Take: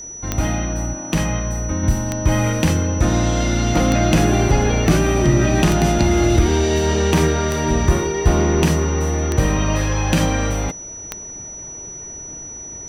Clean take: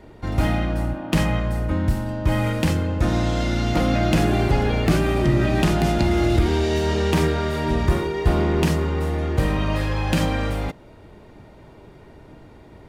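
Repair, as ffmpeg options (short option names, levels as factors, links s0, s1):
-af "adeclick=t=4,bandreject=f=5900:w=30,asetnsamples=n=441:p=0,asendcmd='1.83 volume volume -3.5dB',volume=1"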